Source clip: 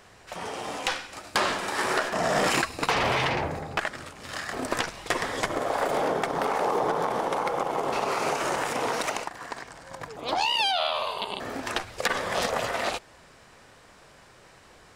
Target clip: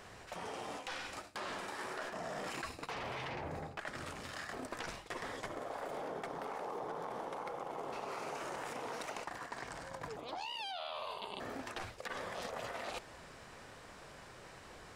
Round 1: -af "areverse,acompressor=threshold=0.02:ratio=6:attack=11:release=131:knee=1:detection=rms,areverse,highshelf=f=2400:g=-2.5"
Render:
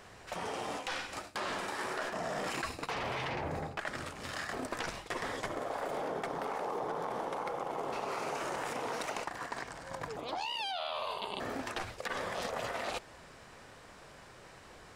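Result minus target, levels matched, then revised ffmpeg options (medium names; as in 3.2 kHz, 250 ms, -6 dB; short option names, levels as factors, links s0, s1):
compression: peak gain reduction -5.5 dB
-af "areverse,acompressor=threshold=0.00944:ratio=6:attack=11:release=131:knee=1:detection=rms,areverse,highshelf=f=2400:g=-2.5"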